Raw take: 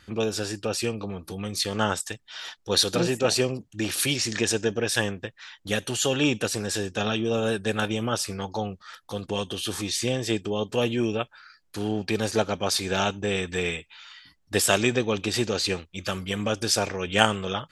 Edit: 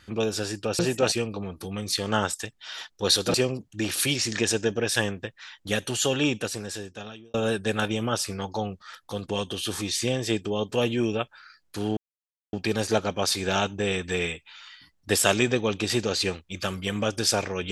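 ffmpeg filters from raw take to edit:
-filter_complex "[0:a]asplit=6[s0][s1][s2][s3][s4][s5];[s0]atrim=end=0.792[s6];[s1]atrim=start=3.008:end=3.342[s7];[s2]atrim=start=0.788:end=3.012[s8];[s3]atrim=start=3.338:end=7.34,asetpts=PTS-STARTPTS,afade=t=out:st=2.722:d=1.28[s9];[s4]atrim=start=7.34:end=11.97,asetpts=PTS-STARTPTS,afade=t=in:d=0.004:c=hsin,afade=t=out:st=4.626:d=0.004:c=hsin,apad=pad_dur=0.56[s10];[s5]atrim=start=11.97,asetpts=PTS-STARTPTS,afade=t=in:d=0.004:c=hsin[s11];[s6][s7]acrossfade=d=0.004:c1=hsin:c2=hsin[s12];[s12][s8]acrossfade=d=0.004:c1=hsin:c2=hsin[s13];[s9][s10][s11]concat=n=3:v=0:a=1[s14];[s13][s14]acrossfade=d=0.004:c1=hsin:c2=hsin"

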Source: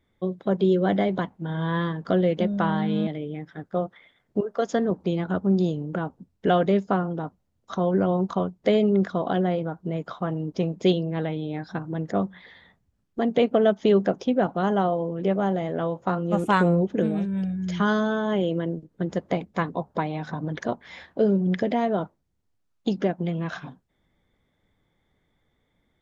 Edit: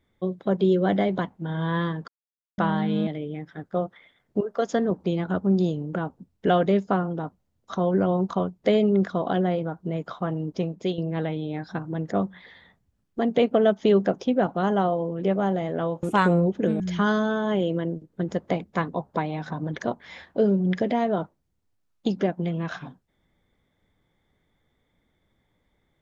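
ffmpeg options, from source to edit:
-filter_complex "[0:a]asplit=6[s0][s1][s2][s3][s4][s5];[s0]atrim=end=2.08,asetpts=PTS-STARTPTS,afade=t=out:st=2.076:d=0.004:c=hsin[s6];[s1]atrim=start=2.08:end=2.58,asetpts=PTS-STARTPTS,volume=0[s7];[s2]atrim=start=2.58:end=10.98,asetpts=PTS-STARTPTS,afade=t=in:d=0.004:c=hsin,afade=t=out:st=7.9:d=0.5:silence=0.334965[s8];[s3]atrim=start=10.98:end=16.032,asetpts=PTS-STARTPTS,afade=t=in:d=0.004:c=hsin:silence=0.334965[s9];[s4]atrim=start=16.378:end=17.152[s10];[s5]atrim=start=17.608[s11];[s6][s7][s8][s9]concat=n=4:v=0:a=1[s12];[s12][s10]acrossfade=d=0.004:c1=hsin:c2=hsin[s13];[s13][s11]acrossfade=d=0.004:c1=hsin:c2=hsin"

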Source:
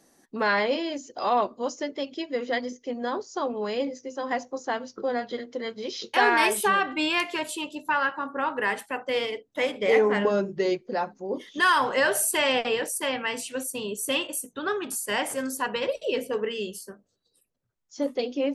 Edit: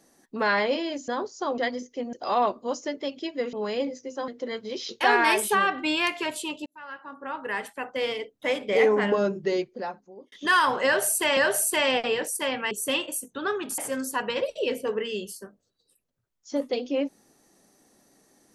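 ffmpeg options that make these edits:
-filter_complex "[0:a]asplit=11[s0][s1][s2][s3][s4][s5][s6][s7][s8][s9][s10];[s0]atrim=end=1.082[s11];[s1]atrim=start=3.028:end=3.532[s12];[s2]atrim=start=2.478:end=3.032[s13];[s3]atrim=start=1.078:end=2.482[s14];[s4]atrim=start=3.528:end=4.282[s15];[s5]atrim=start=5.408:end=7.79,asetpts=PTS-STARTPTS,afade=t=out:st=2.378:d=0.004:c=hsin[s16];[s6]atrim=start=7.79:end=11.45,asetpts=PTS-STARTPTS,afade=t=in:d=2.07:c=qsin,afade=t=out:st=2.81:d=0.85[s17];[s7]atrim=start=11.45:end=12.502,asetpts=PTS-STARTPTS,afade=t=in:d=0.004:c=hsin[s18];[s8]atrim=start=11.978:end=13.322[s19];[s9]atrim=start=13.918:end=14.992[s20];[s10]atrim=start=15.238[s21];[s11][s12]acrossfade=d=0.004:c1=hsin:c2=hsin[s22];[s22][s13]acrossfade=d=0.004:c1=hsin:c2=hsin[s23];[s23][s14]acrossfade=d=0.004:c1=hsin:c2=hsin[s24];[s24][s15]acrossfade=d=0.004:c1=hsin:c2=hsin[s25];[s16][s17][s18]concat=n=3:v=0:a=1[s26];[s25][s26]acrossfade=d=0.004:c1=hsin:c2=hsin[s27];[s27][s19]acrossfade=d=0.004:c1=hsin:c2=hsin[s28];[s28][s20]acrossfade=d=0.004:c1=hsin:c2=hsin[s29];[s29][s21]acrossfade=d=0.004:c1=hsin:c2=hsin"

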